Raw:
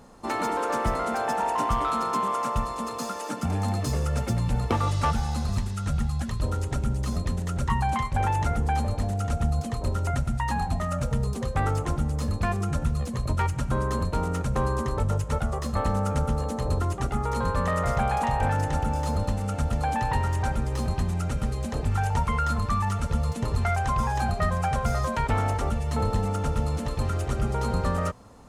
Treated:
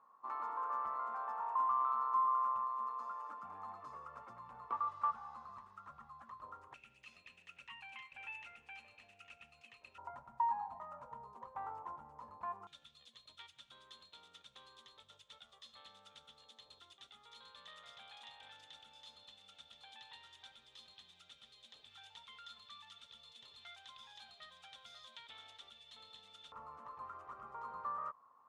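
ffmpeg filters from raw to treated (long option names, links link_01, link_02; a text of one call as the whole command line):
ffmpeg -i in.wav -af "asetnsamples=nb_out_samples=441:pad=0,asendcmd='6.74 bandpass f 2600;9.98 bandpass f 960;12.67 bandpass f 3500;26.52 bandpass f 1100',bandpass=frequency=1100:width_type=q:width=13:csg=0" out.wav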